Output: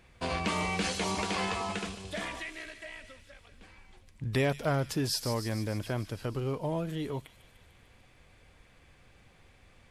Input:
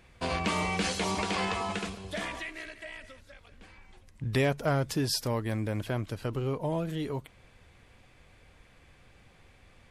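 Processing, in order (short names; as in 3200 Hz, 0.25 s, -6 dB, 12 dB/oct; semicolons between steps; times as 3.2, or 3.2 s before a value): thin delay 0.149 s, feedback 67%, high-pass 3700 Hz, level -8 dB; gain -1.5 dB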